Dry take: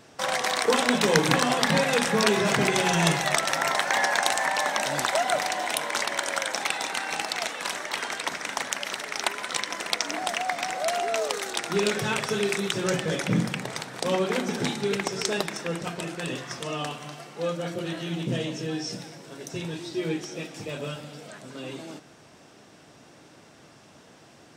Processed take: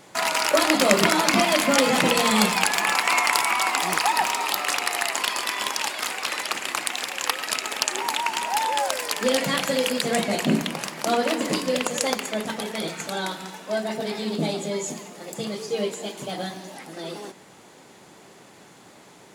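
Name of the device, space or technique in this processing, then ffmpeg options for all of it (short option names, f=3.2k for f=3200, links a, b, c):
nightcore: -af "asetrate=56007,aresample=44100,volume=3dB"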